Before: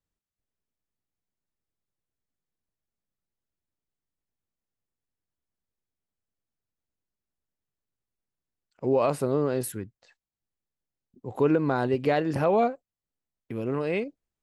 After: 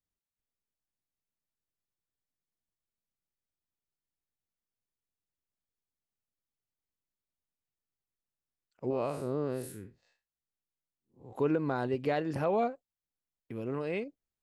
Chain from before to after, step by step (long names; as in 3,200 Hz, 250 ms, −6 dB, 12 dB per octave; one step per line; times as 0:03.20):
0:08.90–0:11.33: spectrum smeared in time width 127 ms
level −6.5 dB